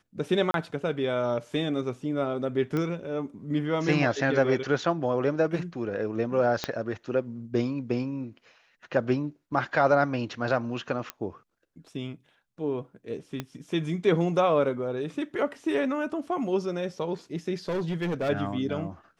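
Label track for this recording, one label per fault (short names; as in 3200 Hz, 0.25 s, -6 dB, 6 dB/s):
0.510000	0.540000	gap 32 ms
2.770000	2.770000	pop -18 dBFS
6.640000	6.640000	pop -12 dBFS
11.100000	11.100000	pop -15 dBFS
13.400000	13.400000	pop -17 dBFS
17.680000	18.300000	clipped -25 dBFS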